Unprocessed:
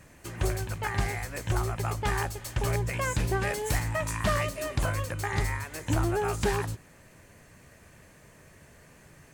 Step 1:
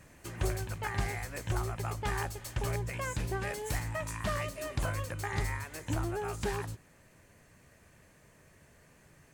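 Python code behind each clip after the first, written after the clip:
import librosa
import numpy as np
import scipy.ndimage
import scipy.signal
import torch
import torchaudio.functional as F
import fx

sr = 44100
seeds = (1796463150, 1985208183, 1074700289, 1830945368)

y = fx.rider(x, sr, range_db=3, speed_s=0.5)
y = y * librosa.db_to_amplitude(-5.5)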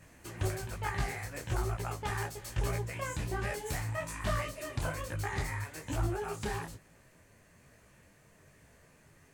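y = fx.detune_double(x, sr, cents=40)
y = y * librosa.db_to_amplitude(3.0)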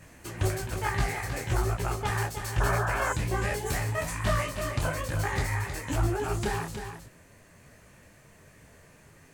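y = x + 10.0 ** (-8.0 / 20.0) * np.pad(x, (int(315 * sr / 1000.0), 0))[:len(x)]
y = fx.spec_paint(y, sr, seeds[0], shape='noise', start_s=2.6, length_s=0.53, low_hz=550.0, high_hz=1800.0, level_db=-36.0)
y = y * librosa.db_to_amplitude(5.5)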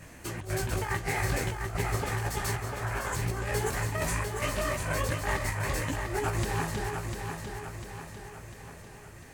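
y = fx.over_compress(x, sr, threshold_db=-31.0, ratio=-0.5)
y = fx.echo_feedback(y, sr, ms=698, feedback_pct=51, wet_db=-6.0)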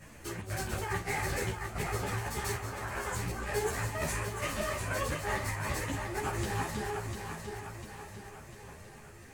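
y = fx.doubler(x, sr, ms=47.0, db=-11)
y = fx.ensemble(y, sr)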